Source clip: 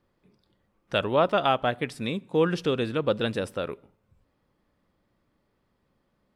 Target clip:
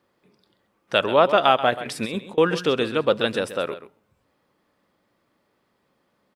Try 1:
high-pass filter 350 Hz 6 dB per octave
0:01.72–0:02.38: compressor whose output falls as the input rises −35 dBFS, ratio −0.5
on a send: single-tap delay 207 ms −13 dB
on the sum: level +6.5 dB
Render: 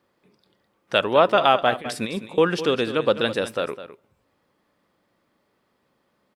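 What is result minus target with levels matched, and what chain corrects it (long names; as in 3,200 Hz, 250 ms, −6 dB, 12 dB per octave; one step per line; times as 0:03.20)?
echo 75 ms late
high-pass filter 350 Hz 6 dB per octave
0:01.72–0:02.38: compressor whose output falls as the input rises −35 dBFS, ratio −0.5
on a send: single-tap delay 132 ms −13 dB
on the sum: level +6.5 dB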